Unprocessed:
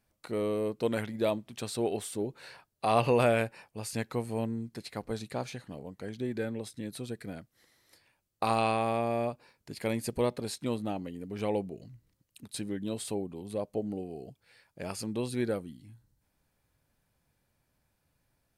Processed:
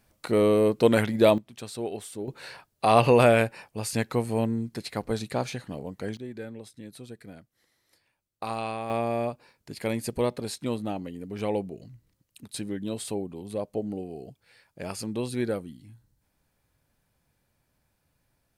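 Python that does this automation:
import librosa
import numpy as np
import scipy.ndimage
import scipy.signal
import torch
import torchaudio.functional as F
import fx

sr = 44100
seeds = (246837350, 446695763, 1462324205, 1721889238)

y = fx.gain(x, sr, db=fx.steps((0.0, 10.0), (1.38, -2.0), (2.28, 6.5), (6.17, -4.5), (8.9, 2.5)))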